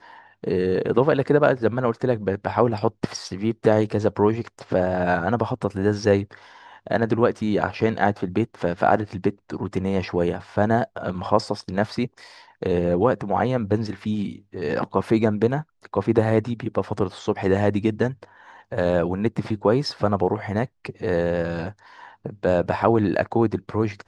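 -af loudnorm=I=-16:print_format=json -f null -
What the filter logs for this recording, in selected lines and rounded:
"input_i" : "-23.1",
"input_tp" : "-2.3",
"input_lra" : "2.5",
"input_thresh" : "-33.5",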